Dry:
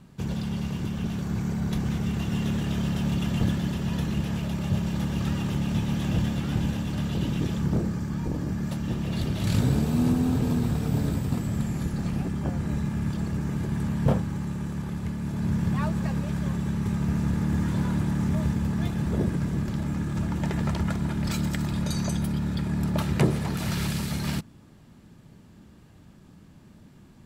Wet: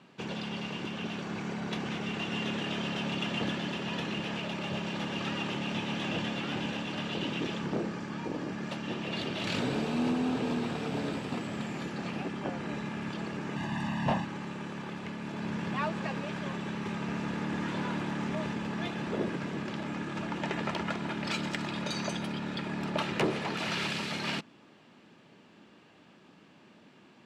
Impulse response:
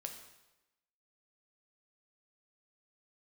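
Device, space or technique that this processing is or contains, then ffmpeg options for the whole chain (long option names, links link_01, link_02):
intercom: -filter_complex "[0:a]asettb=1/sr,asplit=3[link_01][link_02][link_03];[link_01]atrim=end=13.564[link_04];[link_02]atrim=start=13.56:end=14.25,asetpts=PTS-STARTPTS,afade=type=in:duration=0.004:curve=qsin,afade=type=out:start_time=0.686:duration=0.004:curve=qsin,aecho=1:1:1.1:0.9,atrim=end_sample=30429[link_05];[link_03]atrim=start=14.246[link_06];[link_04][link_05]acrossfade=duration=0.004:curve1=hsin:curve2=qsin[link_07];[link_07][link_06]acrossfade=duration=0.004:curve1=qsin:curve2=hsin,highpass=340,lowpass=4600,equalizer=frequency=2700:width_type=o:width=0.56:gain=5.5,asoftclip=type=tanh:threshold=-22dB,volume=2dB"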